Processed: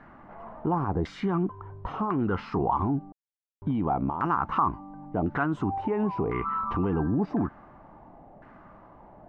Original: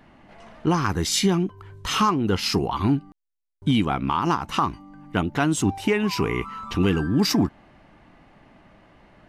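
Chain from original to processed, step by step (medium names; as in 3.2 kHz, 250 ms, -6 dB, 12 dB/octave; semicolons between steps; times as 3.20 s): bit crusher 10-bit; peak limiter -19.5 dBFS, peak gain reduction 8.5 dB; LFO low-pass saw down 0.95 Hz 660–1500 Hz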